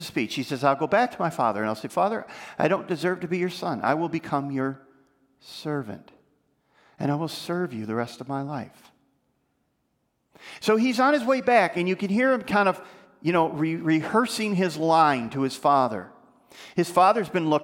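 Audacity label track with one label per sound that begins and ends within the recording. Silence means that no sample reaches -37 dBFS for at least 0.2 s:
5.480000	6.080000	sound
7.000000	8.670000	sound
10.360000	12.900000	sound
13.240000	16.050000	sound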